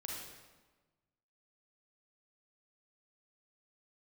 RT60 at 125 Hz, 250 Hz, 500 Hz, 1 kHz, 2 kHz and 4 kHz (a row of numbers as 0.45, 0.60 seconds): 1.6, 1.5, 1.3, 1.3, 1.1, 0.95 seconds